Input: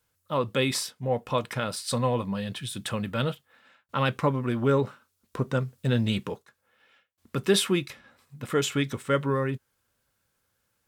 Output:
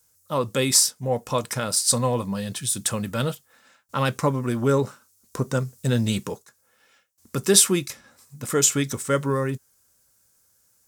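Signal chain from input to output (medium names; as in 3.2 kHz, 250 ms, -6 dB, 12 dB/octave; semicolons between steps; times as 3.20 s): resonant high shelf 4.5 kHz +11 dB, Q 1.5; trim +2.5 dB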